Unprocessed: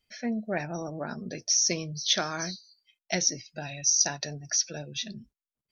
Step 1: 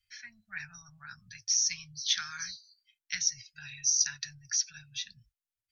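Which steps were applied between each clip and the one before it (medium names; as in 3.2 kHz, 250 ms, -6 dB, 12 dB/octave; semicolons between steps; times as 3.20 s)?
elliptic band-stop 110–1500 Hz, stop band 80 dB; trim -2.5 dB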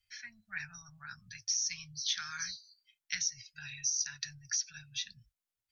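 compression 5:1, threshold -30 dBFS, peak gain reduction 9 dB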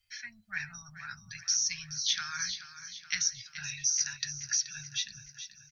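feedback delay 428 ms, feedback 54%, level -12.5 dB; trim +4 dB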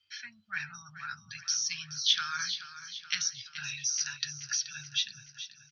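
cabinet simulation 140–5400 Hz, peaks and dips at 200 Hz -6 dB, 300 Hz +6 dB, 670 Hz -8 dB, 1.3 kHz +5 dB, 2 kHz -7 dB, 3.1 kHz +7 dB; trim +2 dB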